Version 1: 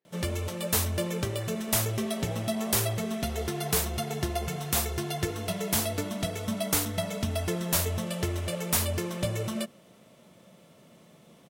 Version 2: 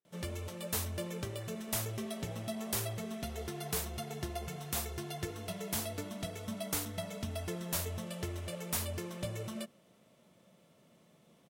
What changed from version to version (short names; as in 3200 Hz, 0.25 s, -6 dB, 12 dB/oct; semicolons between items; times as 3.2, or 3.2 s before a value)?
speech -10.5 dB; background -9.0 dB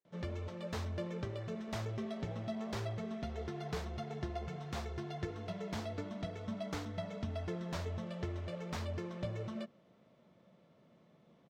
background: add air absorption 190 m; master: add bell 2800 Hz -4 dB 0.62 oct